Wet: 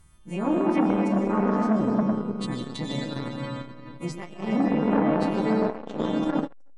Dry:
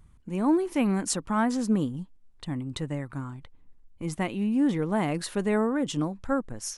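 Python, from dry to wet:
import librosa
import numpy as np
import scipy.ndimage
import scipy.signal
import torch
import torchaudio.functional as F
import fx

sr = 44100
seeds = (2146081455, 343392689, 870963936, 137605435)

y = fx.freq_snap(x, sr, grid_st=2)
y = fx.env_lowpass_down(y, sr, base_hz=570.0, full_db=-20.0)
y = fx.echo_stepped(y, sr, ms=102, hz=230.0, octaves=1.4, feedback_pct=70, wet_db=-4.0)
y = fx.rev_freeverb(y, sr, rt60_s=3.7, hf_ratio=0.7, predelay_ms=75, drr_db=-1.0)
y = fx.transformer_sat(y, sr, knee_hz=580.0)
y = y * 10.0 ** (2.0 / 20.0)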